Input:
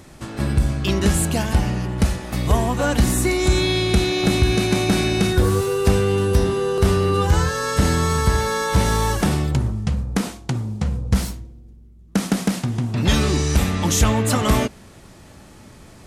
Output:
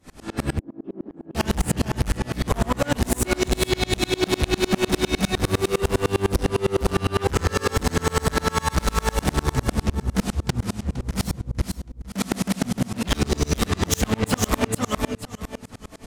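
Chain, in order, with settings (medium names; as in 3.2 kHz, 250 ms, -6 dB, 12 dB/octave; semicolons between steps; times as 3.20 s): flange 0.14 Hz, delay 4 ms, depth 1 ms, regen -72%; in parallel at -6.5 dB: sine folder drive 6 dB, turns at -8.5 dBFS; on the sum: feedback delay 461 ms, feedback 27%, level -5 dB; on a send at -17.5 dB: reverberation RT60 0.25 s, pre-delay 3 ms; on the sum: overload inside the chain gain 17 dB; 0.59–1.35 s: ladder band-pass 340 Hz, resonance 55%; sawtooth tremolo in dB swelling 9.9 Hz, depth 32 dB; trim +5 dB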